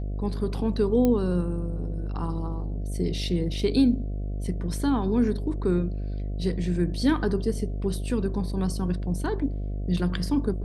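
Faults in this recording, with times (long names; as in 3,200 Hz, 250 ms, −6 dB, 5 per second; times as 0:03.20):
mains buzz 50 Hz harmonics 14 −30 dBFS
0:01.05: click −12 dBFS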